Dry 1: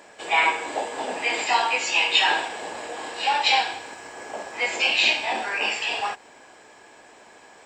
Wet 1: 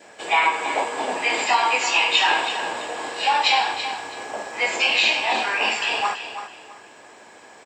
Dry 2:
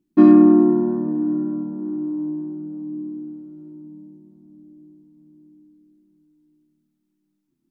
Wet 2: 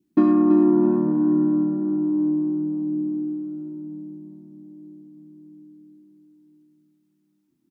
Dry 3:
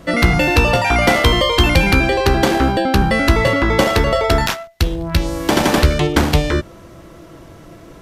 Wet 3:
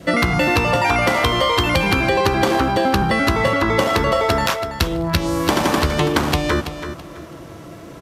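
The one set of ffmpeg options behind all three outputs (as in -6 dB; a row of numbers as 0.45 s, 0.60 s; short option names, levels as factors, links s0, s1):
-filter_complex "[0:a]highpass=69,adynamicequalizer=threshold=0.0158:dfrequency=1100:dqfactor=2.9:tfrequency=1100:tqfactor=2.9:attack=5:release=100:ratio=0.375:range=3:mode=boostabove:tftype=bell,acompressor=threshold=0.158:ratio=12,asplit=2[s0][s1];[s1]aecho=0:1:330|660|990:0.316|0.0791|0.0198[s2];[s0][s2]amix=inputs=2:normalize=0,volume=1.33"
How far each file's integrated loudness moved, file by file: +2.0 LU, -3.0 LU, -2.5 LU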